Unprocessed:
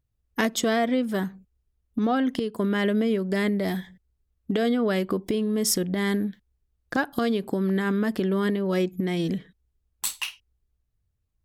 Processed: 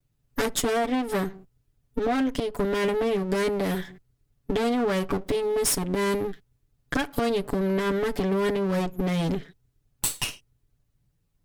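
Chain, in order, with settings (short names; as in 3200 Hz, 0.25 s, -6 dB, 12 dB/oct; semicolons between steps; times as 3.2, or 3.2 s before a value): minimum comb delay 7 ms; dynamic EQ 9300 Hz, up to +7 dB, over -54 dBFS, Q 2.2; compressor 2.5:1, threshold -33 dBFS, peak gain reduction 9.5 dB; gain +7.5 dB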